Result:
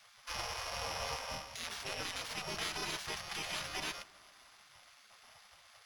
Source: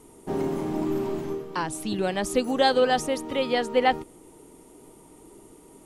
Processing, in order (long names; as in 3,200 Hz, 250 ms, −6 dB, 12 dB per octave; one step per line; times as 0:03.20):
samples sorted by size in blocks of 8 samples
high-shelf EQ 6,700 Hz +9.5 dB
brickwall limiter −17.5 dBFS, peak gain reduction 15 dB
in parallel at −6 dB: sample-rate reduction 8,000 Hz, jitter 0%
on the sum: high-frequency loss of the air 74 metres
gate on every frequency bin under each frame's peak −20 dB weak
on a send: bucket-brigade delay 160 ms, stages 2,048, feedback 67%, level −22.5 dB